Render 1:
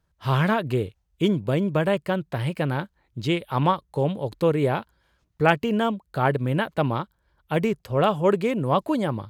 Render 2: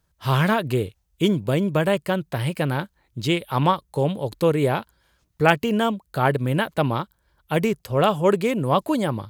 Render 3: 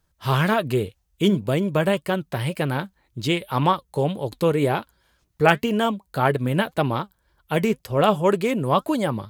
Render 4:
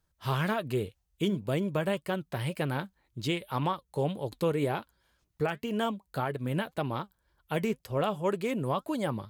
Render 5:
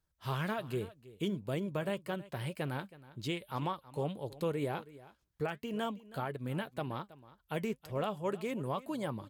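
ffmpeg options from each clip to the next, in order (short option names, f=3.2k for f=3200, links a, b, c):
-af "highshelf=f=5.2k:g=9.5,volume=1.5dB"
-af "flanger=delay=2.3:depth=3.1:regen=72:speed=1.9:shape=triangular,volume=4.5dB"
-af "alimiter=limit=-12dB:level=0:latency=1:release=332,volume=-7dB"
-af "aecho=1:1:322:0.119,volume=-6dB"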